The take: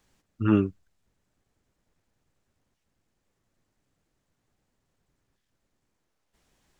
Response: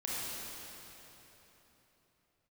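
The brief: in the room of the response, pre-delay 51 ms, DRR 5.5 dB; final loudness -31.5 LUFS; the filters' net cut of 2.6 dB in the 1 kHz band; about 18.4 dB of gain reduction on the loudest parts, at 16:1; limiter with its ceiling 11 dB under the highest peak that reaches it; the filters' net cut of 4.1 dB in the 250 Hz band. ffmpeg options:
-filter_complex "[0:a]equalizer=f=250:t=o:g=-5.5,equalizer=f=1000:t=o:g=-3.5,acompressor=threshold=0.0158:ratio=16,alimiter=level_in=5.01:limit=0.0631:level=0:latency=1,volume=0.2,asplit=2[s0][s1];[1:a]atrim=start_sample=2205,adelay=51[s2];[s1][s2]afir=irnorm=-1:irlink=0,volume=0.316[s3];[s0][s3]amix=inputs=2:normalize=0,volume=13.3"

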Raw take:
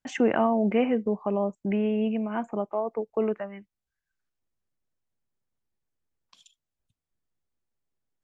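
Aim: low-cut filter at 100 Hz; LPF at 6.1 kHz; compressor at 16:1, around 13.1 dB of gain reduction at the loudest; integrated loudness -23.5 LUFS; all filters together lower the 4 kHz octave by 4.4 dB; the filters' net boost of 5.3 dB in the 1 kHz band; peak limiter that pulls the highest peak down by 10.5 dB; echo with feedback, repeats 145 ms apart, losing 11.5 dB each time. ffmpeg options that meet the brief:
-af "highpass=100,lowpass=6100,equalizer=f=1000:t=o:g=7.5,equalizer=f=4000:t=o:g=-8,acompressor=threshold=0.0355:ratio=16,alimiter=level_in=1.5:limit=0.0631:level=0:latency=1,volume=0.668,aecho=1:1:145|290|435:0.266|0.0718|0.0194,volume=4.22"

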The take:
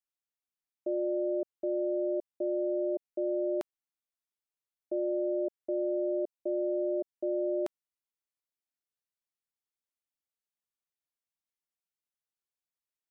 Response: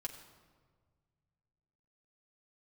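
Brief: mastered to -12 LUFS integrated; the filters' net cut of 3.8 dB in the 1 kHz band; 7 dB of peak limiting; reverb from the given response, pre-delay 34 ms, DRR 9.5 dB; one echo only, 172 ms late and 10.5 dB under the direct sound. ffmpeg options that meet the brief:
-filter_complex "[0:a]equalizer=f=1000:t=o:g=-7,alimiter=level_in=2.66:limit=0.0631:level=0:latency=1,volume=0.376,aecho=1:1:172:0.299,asplit=2[s0][s1];[1:a]atrim=start_sample=2205,adelay=34[s2];[s1][s2]afir=irnorm=-1:irlink=0,volume=0.422[s3];[s0][s3]amix=inputs=2:normalize=0,volume=28.2"

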